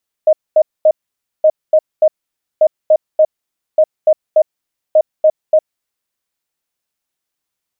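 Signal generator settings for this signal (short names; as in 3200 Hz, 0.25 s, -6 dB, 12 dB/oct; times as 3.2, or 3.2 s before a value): beep pattern sine 623 Hz, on 0.06 s, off 0.23 s, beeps 3, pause 0.53 s, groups 5, -5 dBFS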